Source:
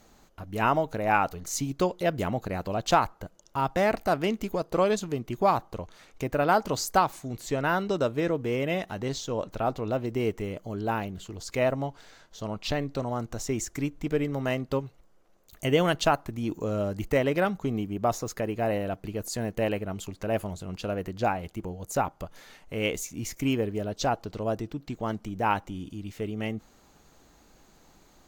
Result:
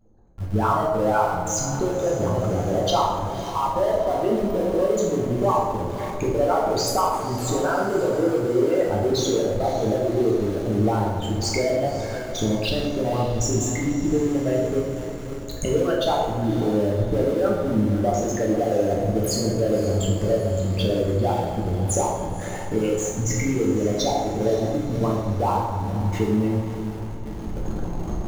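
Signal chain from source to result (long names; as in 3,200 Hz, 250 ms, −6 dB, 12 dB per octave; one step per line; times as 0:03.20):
spectral envelope exaggerated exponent 3
camcorder AGC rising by 21 dB per second
feedback delay with all-pass diffusion 546 ms, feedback 53%, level −13 dB
in parallel at −11.5 dB: comparator with hysteresis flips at −34.5 dBFS
on the sum: dense smooth reverb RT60 1.3 s, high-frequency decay 0.6×, DRR −3.5 dB
level −4 dB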